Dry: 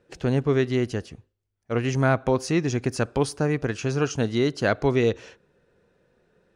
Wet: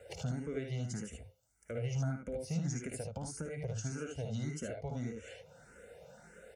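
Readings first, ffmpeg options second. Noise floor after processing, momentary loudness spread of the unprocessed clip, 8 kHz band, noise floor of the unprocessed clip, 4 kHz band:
-67 dBFS, 5 LU, -7.5 dB, -78 dBFS, -16.0 dB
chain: -filter_complex "[0:a]aecho=1:1:1.4:0.69,acompressor=threshold=-48dB:ratio=2,equalizer=f=125:t=o:w=1:g=-6,equalizer=f=250:t=o:w=1:g=-5,equalizer=f=500:t=o:w=1:g=6,equalizer=f=2k:t=o:w=1:g=6,equalizer=f=4k:t=o:w=1:g=-6,equalizer=f=8k:t=o:w=1:g=11,acrossover=split=300[a][b];[b]acompressor=threshold=-50dB:ratio=10[c];[a][c]amix=inputs=2:normalize=0,equalizer=f=1.2k:w=0.38:g=-5.5,flanger=delay=1.5:depth=4.4:regen=-60:speed=0.56:shape=triangular,highpass=78,aecho=1:1:56|75:0.422|0.631,asplit=2[d][e];[e]afreqshift=1.7[f];[d][f]amix=inputs=2:normalize=1,volume=15dB"

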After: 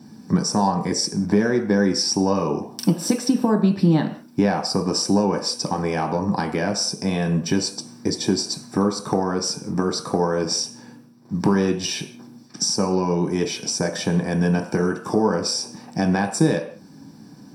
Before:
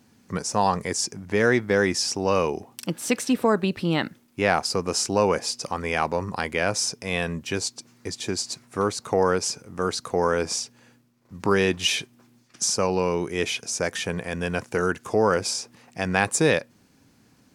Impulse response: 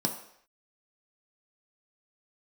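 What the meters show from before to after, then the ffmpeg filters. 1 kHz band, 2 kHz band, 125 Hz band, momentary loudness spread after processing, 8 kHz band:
+0.5 dB, -4.5 dB, +7.5 dB, 5 LU, +1.0 dB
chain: -filter_complex "[0:a]acompressor=threshold=-32dB:ratio=3[a];[1:a]atrim=start_sample=2205,afade=t=out:st=0.26:d=0.01,atrim=end_sample=11907[b];[a][b]afir=irnorm=-1:irlink=0,volume=1.5dB"

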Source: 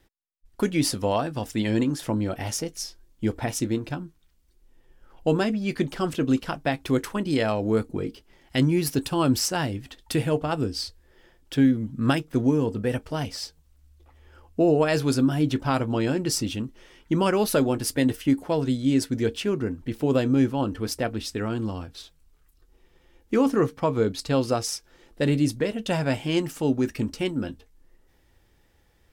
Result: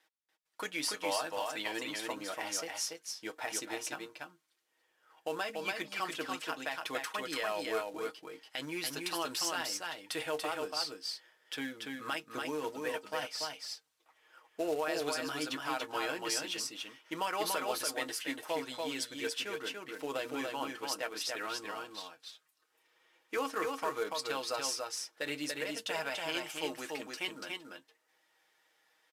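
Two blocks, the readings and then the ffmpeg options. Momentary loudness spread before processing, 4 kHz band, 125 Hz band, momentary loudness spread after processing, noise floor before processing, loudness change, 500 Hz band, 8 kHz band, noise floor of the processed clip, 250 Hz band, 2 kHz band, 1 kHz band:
10 LU, -3.5 dB, -30.0 dB, 9 LU, -62 dBFS, -11.5 dB, -12.0 dB, -5.0 dB, -77 dBFS, -20.0 dB, -3.5 dB, -6.0 dB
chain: -filter_complex "[0:a]highpass=830,highshelf=f=7.1k:g=-6,aecho=1:1:6.4:0.61,alimiter=limit=-20.5dB:level=0:latency=1:release=76,acrusher=bits=4:mode=log:mix=0:aa=0.000001,asplit=2[a][b];[b]aecho=0:1:287:0.668[c];[a][c]amix=inputs=2:normalize=0,aresample=32000,aresample=44100,volume=-3.5dB"

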